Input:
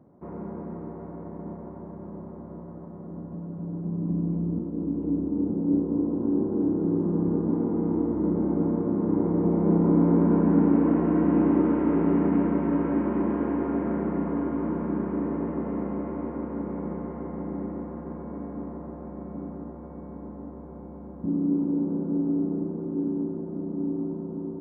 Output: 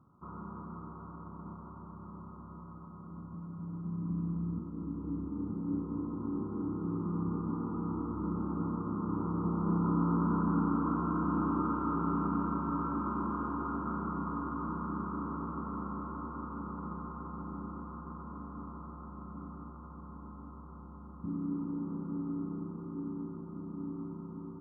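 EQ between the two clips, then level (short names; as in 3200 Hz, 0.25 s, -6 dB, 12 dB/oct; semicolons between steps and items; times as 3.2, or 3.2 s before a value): EQ curve 110 Hz 0 dB, 640 Hz -16 dB, 1300 Hz +14 dB, 1900 Hz -29 dB, 3400 Hz -7 dB; -3.0 dB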